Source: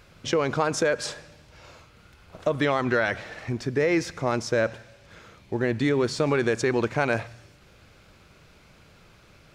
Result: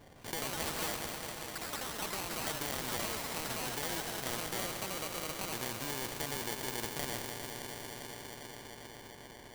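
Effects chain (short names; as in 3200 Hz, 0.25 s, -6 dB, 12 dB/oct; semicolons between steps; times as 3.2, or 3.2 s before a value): on a send: analogue delay 0.201 s, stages 4096, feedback 82%, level -11.5 dB; on the sum: sample-rate reducer 1300 Hz, jitter 0%; echoes that change speed 0.173 s, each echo +5 st, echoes 3; spectral compressor 2:1; gain -9 dB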